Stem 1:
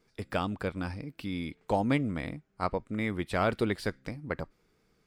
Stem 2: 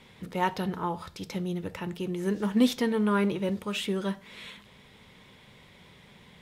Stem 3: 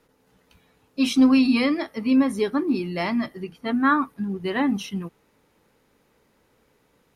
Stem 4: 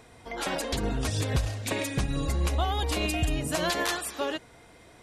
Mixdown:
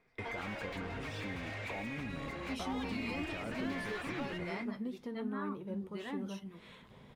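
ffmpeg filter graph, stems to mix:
-filter_complex "[0:a]alimiter=level_in=1.33:limit=0.0631:level=0:latency=1,volume=0.75,volume=1,asplit=2[s0][s1];[1:a]equalizer=f=2400:t=o:w=1.6:g=-8.5,acompressor=mode=upward:threshold=0.0316:ratio=2.5,adelay=2250,volume=0.398[s2];[2:a]alimiter=limit=0.15:level=0:latency=1:release=22,adelay=1500,volume=0.211[s3];[3:a]equalizer=f=2200:t=o:w=0.45:g=11,asplit=2[s4][s5];[s5]highpass=f=720:p=1,volume=35.5,asoftclip=type=tanh:threshold=0.224[s6];[s4][s6]amix=inputs=2:normalize=0,lowpass=f=3400:p=1,volume=0.501,acrossover=split=120|6600[s7][s8][s9];[s7]acompressor=threshold=0.02:ratio=4[s10];[s8]acompressor=threshold=0.0447:ratio=4[s11];[s9]acompressor=threshold=0.00891:ratio=4[s12];[s10][s11][s12]amix=inputs=3:normalize=0,volume=0.473[s13];[s1]apad=whole_len=221410[s14];[s13][s14]sidechaingate=range=0.0224:threshold=0.001:ratio=16:detection=peak[s15];[s0][s2][s15]amix=inputs=3:normalize=0,bass=f=250:g=0,treble=f=4000:g=-12,acompressor=threshold=0.0224:ratio=6,volume=1[s16];[s3][s16]amix=inputs=2:normalize=0,flanger=delay=7.3:depth=3.8:regen=-71:speed=0.44:shape=triangular"

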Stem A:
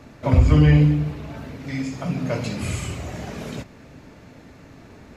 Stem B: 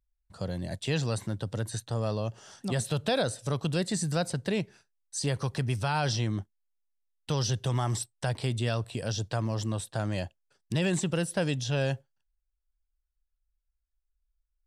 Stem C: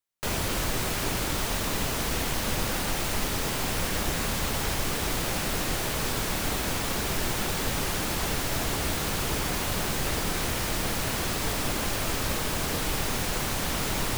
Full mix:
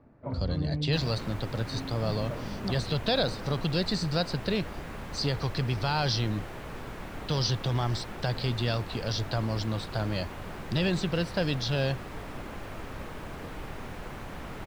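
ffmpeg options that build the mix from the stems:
-filter_complex "[0:a]lowpass=1400,alimiter=limit=0.266:level=0:latency=1:release=247,volume=0.237[s0];[1:a]lowpass=f=4500:t=q:w=4.5,volume=1[s1];[2:a]acrossover=split=2800[s2][s3];[s3]acompressor=threshold=0.00794:ratio=4:attack=1:release=60[s4];[s2][s4]amix=inputs=2:normalize=0,adelay=700,volume=0.355[s5];[s0][s1][s5]amix=inputs=3:normalize=0,highshelf=f=3400:g=-7"

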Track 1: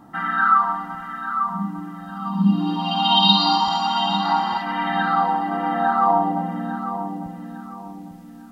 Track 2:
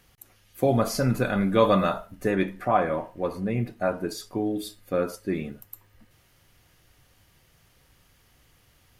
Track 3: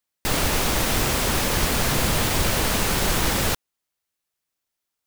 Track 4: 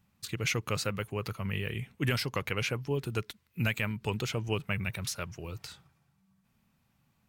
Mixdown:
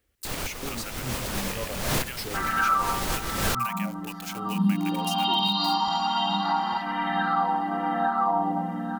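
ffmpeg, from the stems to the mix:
-filter_complex "[0:a]adelay=2200,volume=0.631[s0];[1:a]lowpass=f=1200:p=1,asplit=2[s1][s2];[s2]afreqshift=-0.41[s3];[s1][s3]amix=inputs=2:normalize=1,volume=0.376[s4];[2:a]volume=1.33[s5];[3:a]highpass=930,acrusher=bits=6:mix=0:aa=0.000001,volume=1.12,asplit=2[s6][s7];[s7]apad=whole_len=223503[s8];[s5][s8]sidechaincompress=threshold=0.00282:ratio=6:attack=21:release=236[s9];[s4][s6]amix=inputs=2:normalize=0,highshelf=f=7900:g=11,alimiter=limit=0.0668:level=0:latency=1:release=314,volume=1[s10];[s0][s9]amix=inputs=2:normalize=0,alimiter=limit=0.188:level=0:latency=1:release=188,volume=1[s11];[s10][s11]amix=inputs=2:normalize=0"

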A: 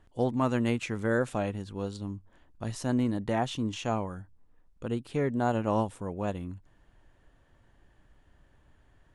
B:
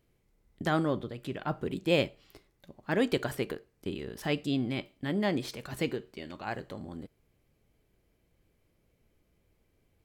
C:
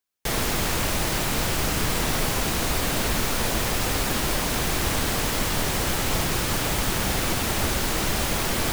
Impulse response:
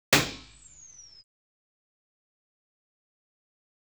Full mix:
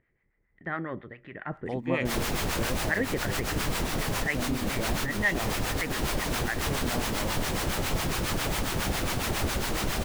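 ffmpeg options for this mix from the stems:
-filter_complex "[0:a]adelay=1500,volume=0.398[s0];[1:a]acompressor=mode=upward:threshold=0.00316:ratio=2.5,lowpass=f=1900:t=q:w=9.6,volume=0.251,asplit=2[s1][s2];[2:a]adelay=1800,volume=0.708[s3];[s2]apad=whole_len=464120[s4];[s3][s4]sidechaincompress=threshold=0.00562:ratio=8:attack=22:release=144[s5];[s0][s5]amix=inputs=2:normalize=0,acompressor=threshold=0.0178:ratio=2.5,volume=1[s6];[s1][s6]amix=inputs=2:normalize=0,highshelf=f=4800:g=-4.5,dynaudnorm=f=460:g=3:m=3.16,acrossover=split=690[s7][s8];[s7]aeval=exprs='val(0)*(1-0.7/2+0.7/2*cos(2*PI*7.3*n/s))':c=same[s9];[s8]aeval=exprs='val(0)*(1-0.7/2-0.7/2*cos(2*PI*7.3*n/s))':c=same[s10];[s9][s10]amix=inputs=2:normalize=0"

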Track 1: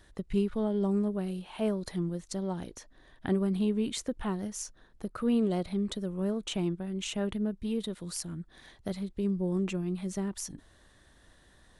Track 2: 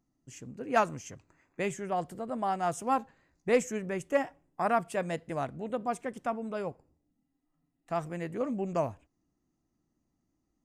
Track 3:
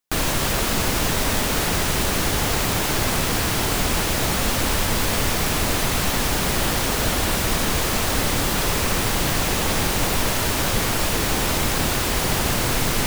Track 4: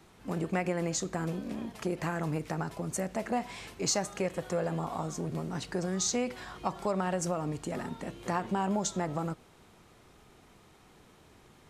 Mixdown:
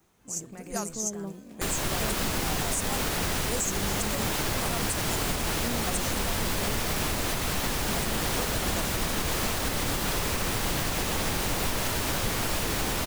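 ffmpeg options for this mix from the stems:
-filter_complex "[0:a]adelay=400,volume=0.422[s0];[1:a]aexciter=amount=14.6:drive=7.7:freq=4800,volume=0.376,asplit=2[s1][s2];[2:a]adelay=1500,volume=0.531[s3];[3:a]alimiter=level_in=1.33:limit=0.0631:level=0:latency=1,volume=0.75,acrusher=bits=6:mode=log:mix=0:aa=0.000001,adynamicequalizer=threshold=0.00224:dfrequency=5400:dqfactor=0.7:tfrequency=5400:tqfactor=0.7:attack=5:release=100:ratio=0.375:range=3.5:mode=boostabove:tftype=highshelf,volume=0.355[s4];[s2]apad=whole_len=537957[s5];[s0][s5]sidechaingate=range=0.0224:threshold=0.00178:ratio=16:detection=peak[s6];[s6][s1][s3][s4]amix=inputs=4:normalize=0,alimiter=limit=0.133:level=0:latency=1:release=112"

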